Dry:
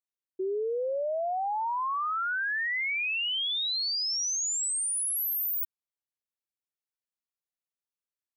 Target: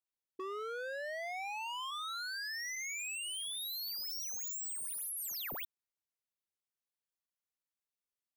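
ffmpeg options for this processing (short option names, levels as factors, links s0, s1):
-filter_complex "[0:a]aeval=exprs='0.0251*(abs(mod(val(0)/0.0251+3,4)-2)-1)':c=same,asplit=3[s0][s1][s2];[s0]afade=t=out:st=1.9:d=0.02[s3];[s1]afreqshift=70,afade=t=in:st=1.9:d=0.02,afade=t=out:st=2.75:d=0.02[s4];[s2]afade=t=in:st=2.75:d=0.02[s5];[s3][s4][s5]amix=inputs=3:normalize=0,volume=0.668"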